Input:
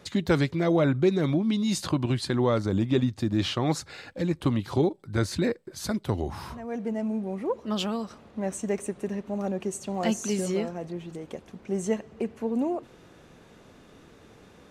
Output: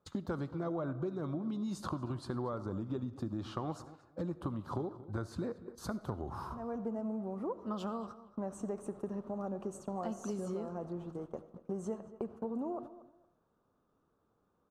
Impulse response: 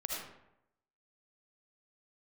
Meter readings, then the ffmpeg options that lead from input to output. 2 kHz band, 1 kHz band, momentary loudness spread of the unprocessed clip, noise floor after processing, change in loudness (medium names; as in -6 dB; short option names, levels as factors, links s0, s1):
-17.5 dB, -8.0 dB, 11 LU, -77 dBFS, -12.0 dB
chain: -filter_complex "[0:a]agate=range=0.0891:threshold=0.0112:ratio=16:detection=peak,highshelf=f=1600:t=q:w=3:g=-8.5,acompressor=threshold=0.0282:ratio=6,asplit=2[s0][s1];[s1]adelay=231,lowpass=f=3100:p=1,volume=0.158,asplit=2[s2][s3];[s3]adelay=231,lowpass=f=3100:p=1,volume=0.22[s4];[s0][s2][s4]amix=inputs=3:normalize=0,asplit=2[s5][s6];[1:a]atrim=start_sample=2205[s7];[s6][s7]afir=irnorm=-1:irlink=0,volume=0.178[s8];[s5][s8]amix=inputs=2:normalize=0,volume=0.562"